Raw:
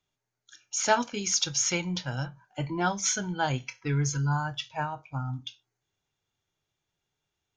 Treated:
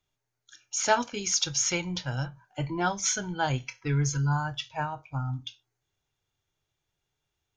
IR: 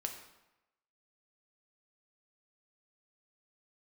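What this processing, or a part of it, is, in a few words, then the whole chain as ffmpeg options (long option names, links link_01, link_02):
low shelf boost with a cut just above: -af "lowshelf=frequency=98:gain=7,equalizer=frequency=200:width_type=o:width=0.61:gain=-4.5"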